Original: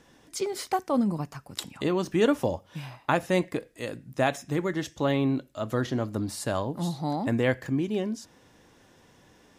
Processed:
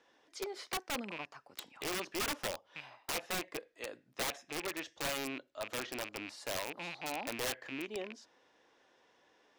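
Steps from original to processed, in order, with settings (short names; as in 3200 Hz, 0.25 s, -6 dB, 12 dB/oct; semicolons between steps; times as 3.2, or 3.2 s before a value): rattling part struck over -35 dBFS, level -24 dBFS; three-band isolator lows -22 dB, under 340 Hz, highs -19 dB, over 5800 Hz; wrapped overs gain 22 dB; gain -7.5 dB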